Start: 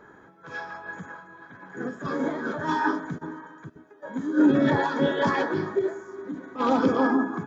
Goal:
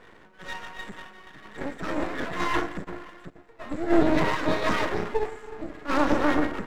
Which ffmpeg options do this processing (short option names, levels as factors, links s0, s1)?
-af "aeval=exprs='max(val(0),0)':c=same,asetrate=49392,aresample=44100,volume=1.41"